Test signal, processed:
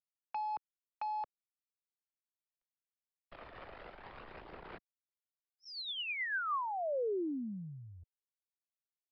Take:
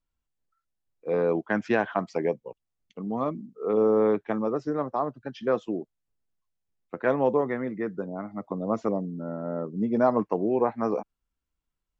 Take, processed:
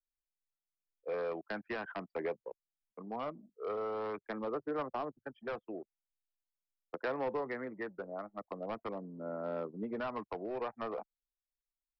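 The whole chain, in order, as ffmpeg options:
-filter_complex "[0:a]anlmdn=1.58,acrossover=split=400 2800:gain=0.2 1 0.0891[a][b][c];[a][b][c]amix=inputs=3:normalize=0,acrossover=split=160|430|1100[d][e][f][g];[d]acompressor=threshold=-56dB:ratio=4[h];[e]acompressor=threshold=-37dB:ratio=4[i];[f]acompressor=threshold=-41dB:ratio=4[j];[g]acompressor=threshold=-37dB:ratio=4[k];[h][i][j][k]amix=inputs=4:normalize=0,aresample=11025,asoftclip=type=hard:threshold=-30dB,aresample=44100,aphaser=in_gain=1:out_gain=1:delay=1.7:decay=0.27:speed=0.42:type=sinusoidal,volume=-2.5dB"

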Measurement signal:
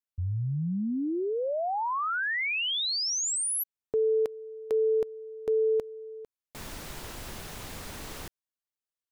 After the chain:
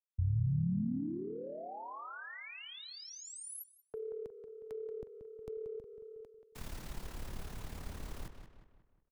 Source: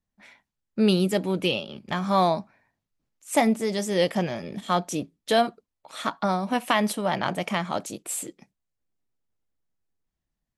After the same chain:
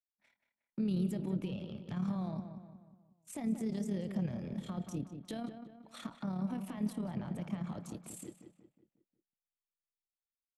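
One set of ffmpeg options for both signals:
-filter_complex "[0:a]agate=range=-33dB:threshold=-40dB:ratio=3:release=135:detection=peak,lowshelf=f=89:g=7,tremolo=f=36:d=0.667,alimiter=limit=-19.5dB:level=0:latency=1:release=22,acrossover=split=240[a][b];[b]acompressor=threshold=-42dB:ratio=5:attack=0.49:release=174:knee=2.83:detection=peak[c];[a][c]amix=inputs=2:normalize=0,asplit=2[d][e];[e]adelay=181,lowpass=f=2.8k:p=1,volume=-8.5dB,asplit=2[f][g];[g]adelay=181,lowpass=f=2.8k:p=1,volume=0.47,asplit=2[h][i];[i]adelay=181,lowpass=f=2.8k:p=1,volume=0.47,asplit=2[j][k];[k]adelay=181,lowpass=f=2.8k:p=1,volume=0.47,asplit=2[l][m];[m]adelay=181,lowpass=f=2.8k:p=1,volume=0.47[n];[d][f][h][j][l][n]amix=inputs=6:normalize=0,adynamicequalizer=threshold=0.00178:dfrequency=1600:dqfactor=0.7:tfrequency=1600:tqfactor=0.7:attack=5:release=100:ratio=0.375:range=2:mode=cutabove:tftype=highshelf,volume=-1.5dB"

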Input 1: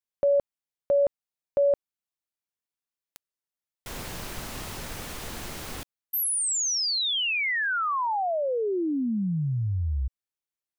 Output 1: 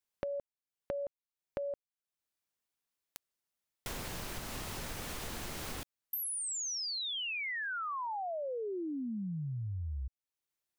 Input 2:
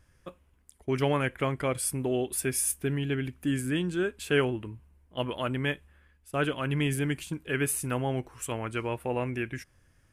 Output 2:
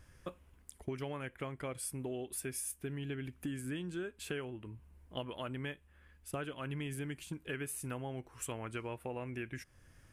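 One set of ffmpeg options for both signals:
-af "acompressor=threshold=-39dB:ratio=12:attack=14:release=415:knee=6:detection=rms,volume=3dB"

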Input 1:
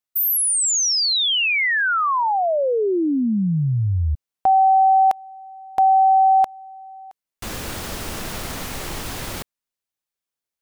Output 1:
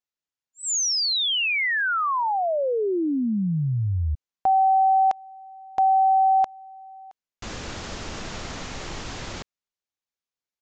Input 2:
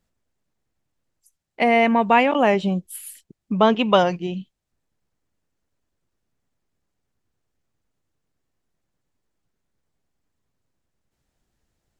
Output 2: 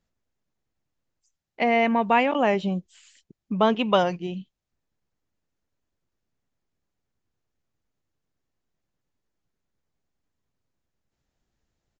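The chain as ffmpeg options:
-af "aresample=16000,aresample=44100,volume=-4dB"

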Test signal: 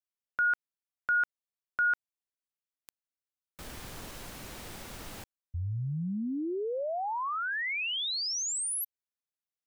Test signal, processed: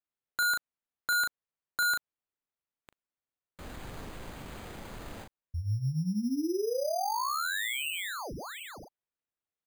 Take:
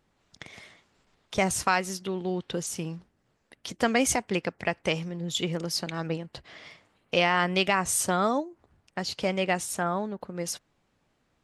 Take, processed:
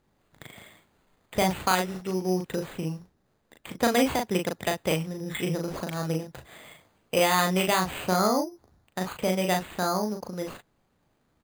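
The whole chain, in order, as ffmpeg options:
-filter_complex "[0:a]aemphasis=mode=reproduction:type=75fm,asplit=2[a][b];[b]adelay=38,volume=-4dB[c];[a][c]amix=inputs=2:normalize=0,acrusher=samples=8:mix=1:aa=0.000001"

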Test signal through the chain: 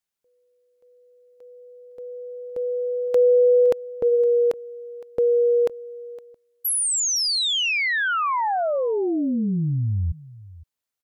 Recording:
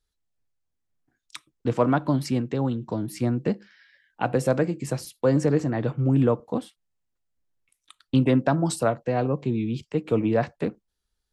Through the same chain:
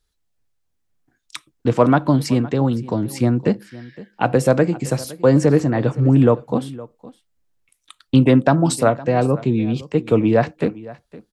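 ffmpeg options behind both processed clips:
-af "aecho=1:1:513:0.106,volume=7dB"

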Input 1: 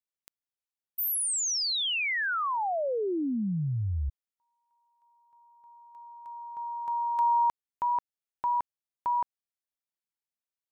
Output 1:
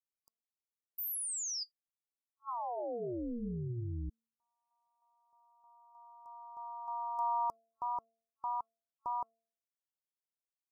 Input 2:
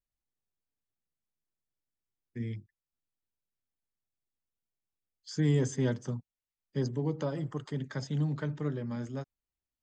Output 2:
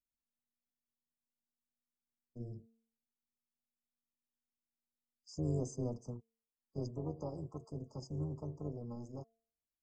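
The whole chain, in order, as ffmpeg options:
-af "afftfilt=real='re*(1-between(b*sr/4096,1100,4800))':imag='im*(1-between(b*sr/4096,1100,4800))':win_size=4096:overlap=0.75,tremolo=f=240:d=0.75,bandreject=f=226.8:t=h:w=4,bandreject=f=453.6:t=h:w=4,bandreject=f=680.4:t=h:w=4,volume=-5.5dB"

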